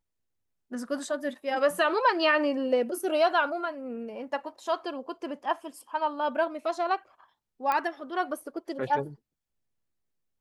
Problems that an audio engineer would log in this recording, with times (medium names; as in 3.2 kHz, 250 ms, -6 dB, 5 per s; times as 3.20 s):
7.72 s: pop -15 dBFS